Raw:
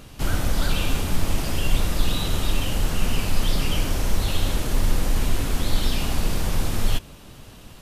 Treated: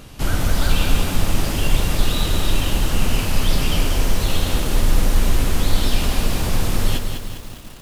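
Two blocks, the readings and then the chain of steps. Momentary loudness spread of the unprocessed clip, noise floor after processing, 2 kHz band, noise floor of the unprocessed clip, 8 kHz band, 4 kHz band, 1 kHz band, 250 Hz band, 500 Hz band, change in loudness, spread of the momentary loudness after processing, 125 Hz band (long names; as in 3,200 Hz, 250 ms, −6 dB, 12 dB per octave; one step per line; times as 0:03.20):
3 LU, −37 dBFS, +4.5 dB, −44 dBFS, +4.5 dB, +4.0 dB, +4.0 dB, +4.0 dB, +4.5 dB, +4.0 dB, 3 LU, +4.0 dB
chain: feedback echo at a low word length 200 ms, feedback 55%, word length 7 bits, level −6 dB
level +3 dB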